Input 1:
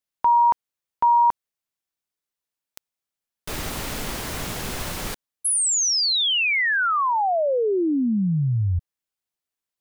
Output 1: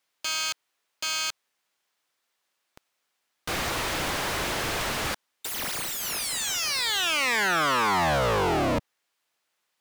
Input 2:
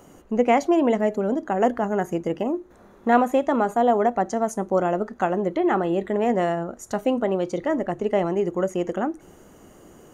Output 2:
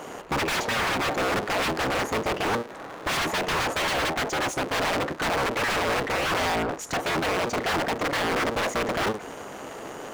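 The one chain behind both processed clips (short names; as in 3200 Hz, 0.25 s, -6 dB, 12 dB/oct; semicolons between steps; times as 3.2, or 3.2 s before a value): cycle switcher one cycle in 3, inverted; wrapped overs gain 20.5 dB; overdrive pedal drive 23 dB, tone 3100 Hz, clips at -20.5 dBFS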